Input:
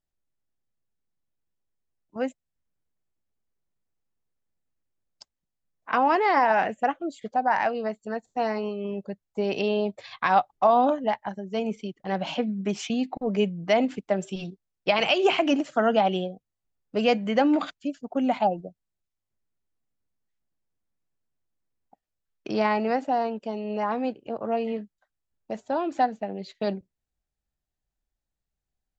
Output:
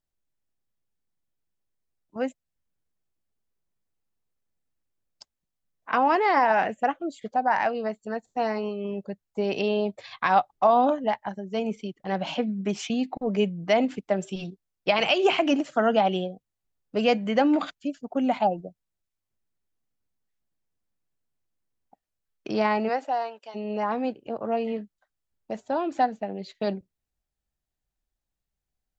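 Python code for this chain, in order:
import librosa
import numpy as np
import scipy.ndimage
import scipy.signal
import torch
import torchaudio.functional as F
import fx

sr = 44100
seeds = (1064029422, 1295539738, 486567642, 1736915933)

y = fx.highpass(x, sr, hz=fx.line((22.88, 380.0), (23.54, 1100.0)), slope=12, at=(22.88, 23.54), fade=0.02)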